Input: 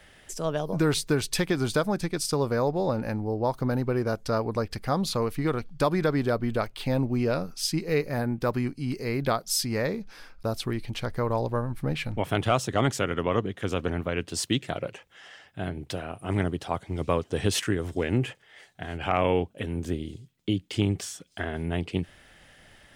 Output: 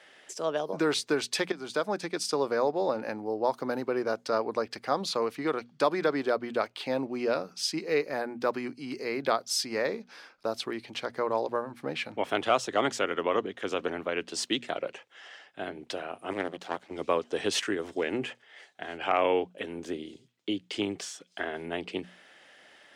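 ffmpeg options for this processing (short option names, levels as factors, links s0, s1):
-filter_complex "[0:a]asettb=1/sr,asplit=3[s0][s1][s2];[s0]atrim=end=3.184[s3];[s1]atrim=start=3.18:end=3.89,asetpts=PTS-STARTPTS,afade=t=in:d=0.004:c=qsin,afade=t=out:st=0.706:d=0.004:c=qsin,highshelf=f=8400:g=7[s4];[s2]atrim=start=3.886[s5];[s3][s4]acrossfade=d=0.004:c1=hsin:c2=qsin[s6];[s6][s5]acrossfade=d=0.004:c1=qsin:c2=hsin,asettb=1/sr,asplit=3[s7][s8][s9];[s7]atrim=end=16.334[s10];[s8]atrim=start=16.33:end=16.91,asetpts=PTS-STARTPTS,afade=t=in:d=0.004:c=qsin,afade=t=out:st=0.576:d=0.004:c=qsin,aeval=exprs='max(val(0),0)':c=same[s11];[s9]atrim=start=16.906[s12];[s10][s11]acrossfade=d=0.004:c1=hsin:c2=qsin[s13];[s13][s12]acrossfade=d=0.004:c1=qsin:c2=hsin,asplit=2[s14][s15];[s14]atrim=end=1.52,asetpts=PTS-STARTPTS,afade=t=out:st=1.516:d=0.004:c=hsin:silence=0.177828[s16];[s15]atrim=start=1.52,asetpts=PTS-STARTPTS,afade=t=in:d=0.42:silence=0.177828[s17];[s16][s17]concat=n=2:v=0:a=1,highpass=87,acrossover=split=260 7700:gain=0.0794 1 0.224[s18][s19][s20];[s18][s19][s20]amix=inputs=3:normalize=0,bandreject=f=60:t=h:w=6,bandreject=f=120:t=h:w=6,bandreject=f=180:t=h:w=6,bandreject=f=240:t=h:w=6"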